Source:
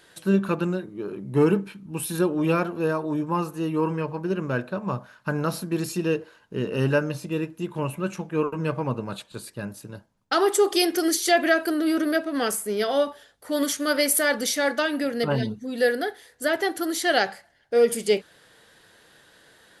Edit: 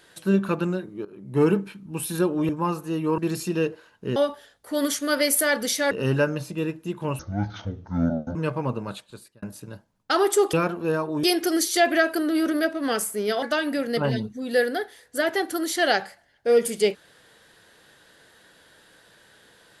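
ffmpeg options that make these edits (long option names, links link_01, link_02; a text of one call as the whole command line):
ffmpeg -i in.wav -filter_complex "[0:a]asplit=12[link_01][link_02][link_03][link_04][link_05][link_06][link_07][link_08][link_09][link_10][link_11][link_12];[link_01]atrim=end=1.05,asetpts=PTS-STARTPTS,afade=type=out:start_time=1.046:duration=0.004:curve=hsin:silence=0.11885[link_13];[link_02]atrim=start=1.05:end=2.492,asetpts=PTS-STARTPTS,afade=type=in:duration=0.39:silence=0.11885[link_14];[link_03]atrim=start=3.188:end=3.882[link_15];[link_04]atrim=start=5.668:end=6.652[link_16];[link_05]atrim=start=12.938:end=14.692[link_17];[link_06]atrim=start=6.648:end=7.934[link_18];[link_07]atrim=start=7.93:end=8.57,asetpts=PTS-STARTPTS,asetrate=24255,aresample=44100,atrim=end_sample=51316,asetpts=PTS-STARTPTS[link_19];[link_08]atrim=start=8.566:end=9.64,asetpts=PTS-STARTPTS,afade=type=out:start_time=0.524:duration=0.55[link_20];[link_09]atrim=start=9.64:end=10.752,asetpts=PTS-STARTPTS,afade=type=in:duration=0.004:curve=hsin[link_21];[link_10]atrim=start=2.488:end=3.192[link_22];[link_11]atrim=start=10.748:end=12.942[link_23];[link_12]atrim=start=14.688[link_24];[link_13][link_14]concat=n=2:v=0:a=1[link_25];[link_25][link_15]acrossfade=duration=0.004:curve1=hsin:curve2=hsin[link_26];[link_26][link_16]acrossfade=duration=0.004:curve1=hsin:curve2=hsin[link_27];[link_27][link_17]acrossfade=duration=0.004:curve1=hsin:curve2=hsin[link_28];[link_28][link_18]acrossfade=duration=0.004:curve1=hsin:curve2=hsin[link_29];[link_29][link_19]acrossfade=duration=0.004:curve1=hsin:curve2=hsin[link_30];[link_20][link_21]concat=n=2:v=0:a=1[link_31];[link_30][link_31]acrossfade=duration=0.004:curve1=hsin:curve2=hsin[link_32];[link_32][link_22]acrossfade=duration=0.004:curve1=hsin:curve2=hsin[link_33];[link_33][link_23]acrossfade=duration=0.004:curve1=hsin:curve2=hsin[link_34];[link_34][link_24]acrossfade=duration=0.004:curve1=hsin:curve2=hsin" out.wav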